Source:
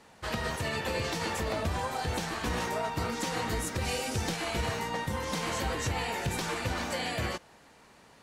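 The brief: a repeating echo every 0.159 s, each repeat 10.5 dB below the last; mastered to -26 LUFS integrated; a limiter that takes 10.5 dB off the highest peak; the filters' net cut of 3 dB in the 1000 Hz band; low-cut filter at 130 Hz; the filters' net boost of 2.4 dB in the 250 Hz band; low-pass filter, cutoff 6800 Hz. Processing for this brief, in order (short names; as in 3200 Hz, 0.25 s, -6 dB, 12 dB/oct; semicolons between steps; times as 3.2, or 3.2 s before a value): HPF 130 Hz; LPF 6800 Hz; bell 250 Hz +4 dB; bell 1000 Hz -4 dB; limiter -29.5 dBFS; feedback echo 0.159 s, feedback 30%, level -10.5 dB; gain +11.5 dB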